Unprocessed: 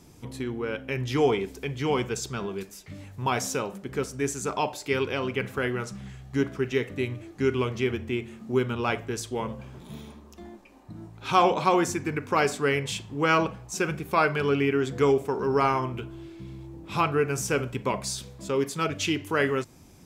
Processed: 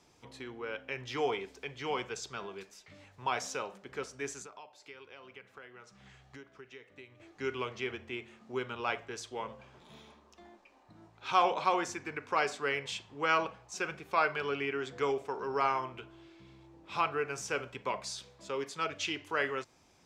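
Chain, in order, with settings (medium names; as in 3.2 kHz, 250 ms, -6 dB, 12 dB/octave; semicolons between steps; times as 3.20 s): three-band isolator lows -13 dB, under 460 Hz, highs -17 dB, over 7 kHz; 4.42–7.20 s: compression 6:1, threshold -44 dBFS, peak gain reduction 19.5 dB; trim -5 dB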